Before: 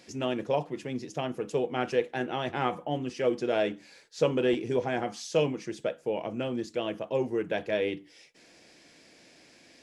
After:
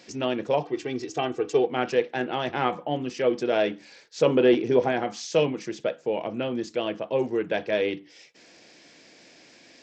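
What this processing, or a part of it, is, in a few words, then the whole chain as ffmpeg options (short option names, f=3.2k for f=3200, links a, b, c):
Bluetooth headset: -filter_complex "[0:a]asettb=1/sr,asplit=3[a][b][c];[a]atrim=end=0.634[d];[b]atrim=start=0.63:end=1.67,asetpts=PTS-STARTPTS,afade=t=in:d=0.004:c=qsin,afade=t=out:st=1.036:d=0.004:c=qsin,aecho=1:1:2.6:0.77,atrim=end_sample=45864[e];[c]atrim=start=1.666[f];[d][e]acrossfade=d=0.004:c1=hsin:c2=qsin[g];[g][f]acrossfade=d=0.004:c1=qsin:c2=hsin,asettb=1/sr,asplit=3[h][i][j];[h]atrim=end=4.264[k];[i]atrim=start=4.26:end=4.92,asetpts=PTS-STARTPTS,afade=t=in:d=0.004:c=qsin,afade=t=out:st=0.656:d=0.004:c=qsin,equalizer=f=400:w=0.35:g=4[l];[j]atrim=start=4.916[m];[k][l]acrossfade=d=0.004:c1=hsin:c2=qsin[n];[n][m]acrossfade=d=0.004:c1=qsin:c2=hsin,highpass=f=140:p=1,aresample=16000,aresample=44100,volume=4dB" -ar 32000 -c:a sbc -b:a 64k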